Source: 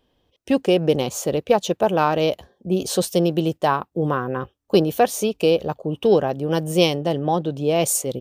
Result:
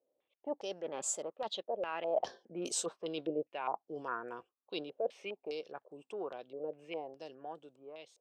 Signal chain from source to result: ending faded out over 0.85 s; Doppler pass-by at 2.3, 24 m/s, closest 4.3 m; HPF 380 Hz 12 dB/oct; reverse; compressor 12:1, threshold -41 dBFS, peak gain reduction 20 dB; reverse; stepped low-pass 4.9 Hz 550–7700 Hz; gain +4.5 dB

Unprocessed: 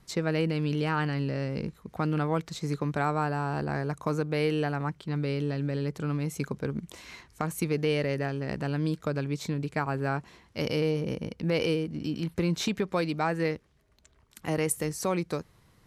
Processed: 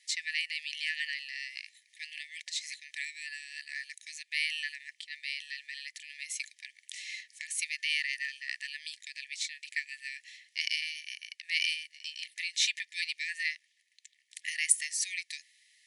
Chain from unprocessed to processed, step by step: brick-wall FIR band-pass 1700–11000 Hz; gain +6 dB

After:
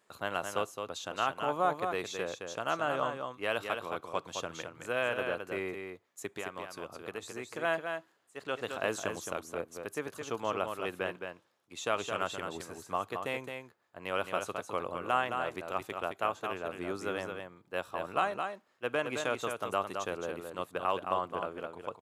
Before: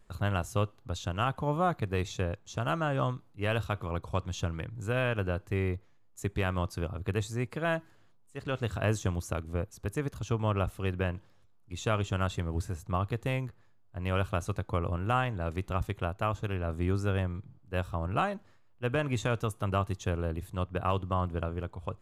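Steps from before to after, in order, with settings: HPF 380 Hz 12 dB/oct; 6.26–7.53 compressor 3:1, threshold -38 dBFS, peak gain reduction 8.5 dB; echo 0.216 s -6 dB

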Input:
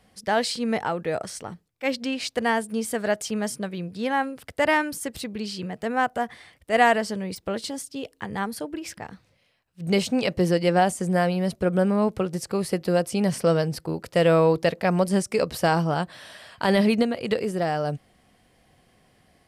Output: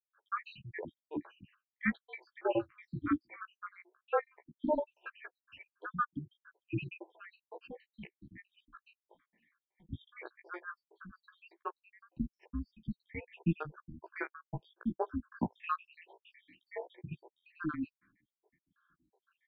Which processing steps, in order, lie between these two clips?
random spectral dropouts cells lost 84%; flange 0.16 Hz, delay 9.7 ms, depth 8.3 ms, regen -7%; mistuned SSB -330 Hz 560–2900 Hz; gain +1 dB

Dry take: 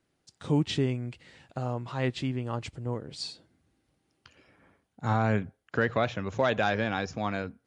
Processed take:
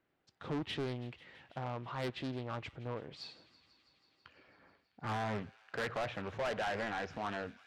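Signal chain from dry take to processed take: LPF 2500 Hz 12 dB/oct; low shelf 330 Hz -9 dB; soft clip -32 dBFS, distortion -6 dB; thin delay 0.164 s, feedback 80%, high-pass 1800 Hz, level -18 dB; Doppler distortion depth 0.51 ms

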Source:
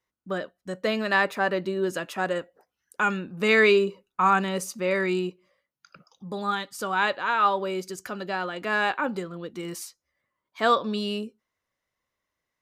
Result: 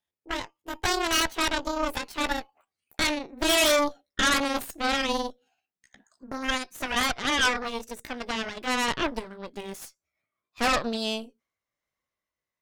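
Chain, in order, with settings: gliding pitch shift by +9.5 st ending unshifted; added harmonics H 8 -9 dB, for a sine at -9 dBFS; gain -4 dB

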